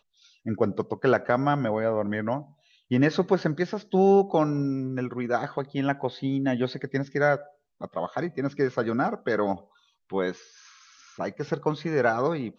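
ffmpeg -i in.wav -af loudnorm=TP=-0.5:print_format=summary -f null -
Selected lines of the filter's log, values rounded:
Input Integrated:    -26.7 LUFS
Input True Peak:      -8.6 dBTP
Input LRA:             5.0 LU
Input Threshold:     -37.5 LUFS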